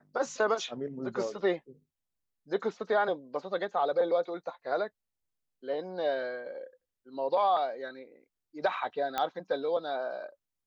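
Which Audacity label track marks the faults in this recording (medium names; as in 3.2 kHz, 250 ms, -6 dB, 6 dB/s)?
9.180000	9.180000	pop -16 dBFS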